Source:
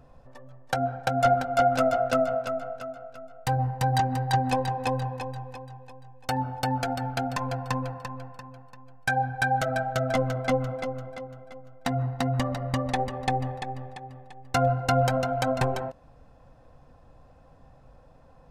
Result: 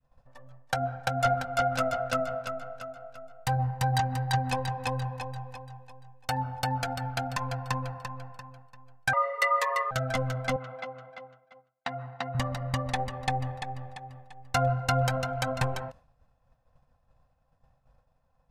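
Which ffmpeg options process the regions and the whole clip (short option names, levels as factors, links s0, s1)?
-filter_complex "[0:a]asettb=1/sr,asplit=3[s0][s1][s2];[s0]atrim=end=9.134[s3];[s1]atrim=start=9.13:end=9.91,asetpts=PTS-STARTPTS,afade=t=in:d=0.004:c=qsin,afade=t=out:st=0.776:d=0.004:c=qsin,lowshelf=f=130:g=9,afreqshift=430[s4];[s2]atrim=start=9.906[s5];[s3][s4]acrossfade=d=0.004:c1=hsin:c2=qsin[s6];[s6][s5]acrossfade=d=0.004:c1=qsin:c2=hsin,asettb=1/sr,asplit=3[s7][s8][s9];[s7]atrim=end=10.564[s10];[s8]atrim=start=10.56:end=12.35,asetpts=PTS-STARTPTS,afade=t=in:d=0.004:c=qsin,afade=t=out:st=1.786:d=0.004:c=qsin,highpass=110,lowpass=3500,lowshelf=f=330:g=-12[s11];[s9]atrim=start=12.346[s12];[s10][s11]acrossfade=d=0.004:c1=hsin:c2=qsin[s13];[s13][s12]acrossfade=d=0.004:c1=qsin:c2=hsin,adynamicequalizer=threshold=0.0126:dfrequency=710:dqfactor=2.8:tfrequency=710:tqfactor=2.8:attack=5:release=100:ratio=0.375:range=2.5:mode=cutabove:tftype=bell,agate=range=0.0224:threshold=0.00708:ratio=3:detection=peak,equalizer=f=340:t=o:w=0.93:g=-13"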